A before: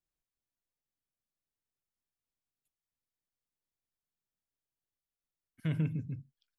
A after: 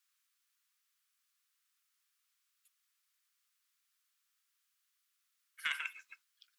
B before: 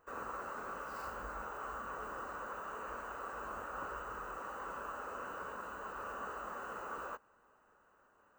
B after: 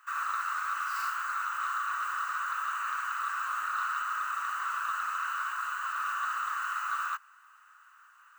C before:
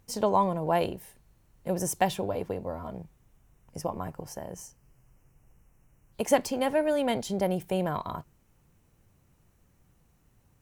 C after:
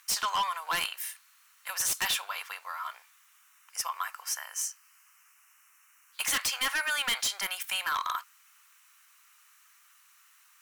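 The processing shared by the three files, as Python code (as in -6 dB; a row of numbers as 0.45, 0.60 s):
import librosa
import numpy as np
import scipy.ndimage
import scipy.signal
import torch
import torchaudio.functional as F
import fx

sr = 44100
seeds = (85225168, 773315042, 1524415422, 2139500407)

p1 = scipy.signal.sosfilt(scipy.signal.cheby1(4, 1.0, 1200.0, 'highpass', fs=sr, output='sos'), x)
p2 = fx.fold_sine(p1, sr, drive_db=18, ceiling_db=-17.5)
y = p1 + (p2 * 10.0 ** (-9.0 / 20.0))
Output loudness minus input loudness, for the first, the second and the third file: -2.5, +11.5, -1.0 LU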